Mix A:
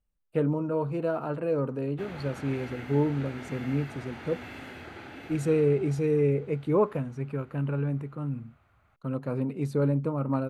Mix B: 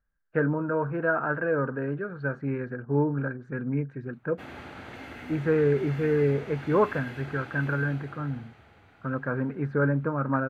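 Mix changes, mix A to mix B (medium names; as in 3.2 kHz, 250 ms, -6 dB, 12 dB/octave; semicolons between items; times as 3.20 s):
speech: add resonant low-pass 1.6 kHz, resonance Q 12; background: entry +2.40 s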